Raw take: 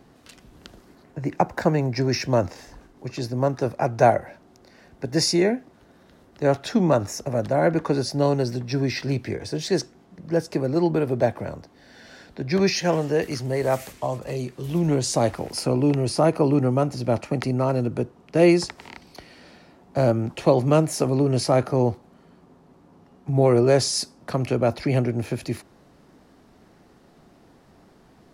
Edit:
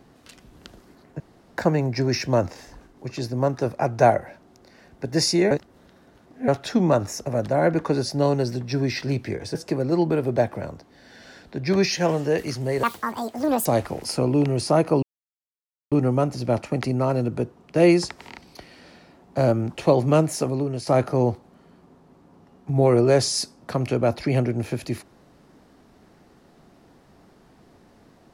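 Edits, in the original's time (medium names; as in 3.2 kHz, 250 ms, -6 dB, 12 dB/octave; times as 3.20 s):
1.20–1.58 s: room tone
5.51–6.48 s: reverse
9.55–10.39 s: delete
13.67–15.14 s: speed 178%
16.51 s: insert silence 0.89 s
20.86–21.46 s: fade out, to -10.5 dB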